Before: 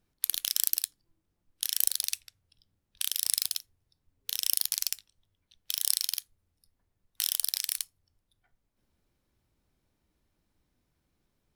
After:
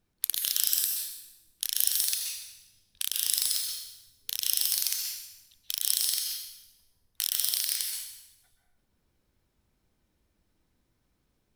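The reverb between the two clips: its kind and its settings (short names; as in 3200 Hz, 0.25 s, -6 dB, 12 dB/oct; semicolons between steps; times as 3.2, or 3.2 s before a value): plate-style reverb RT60 0.94 s, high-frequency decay 0.95×, pre-delay 0.115 s, DRR 1 dB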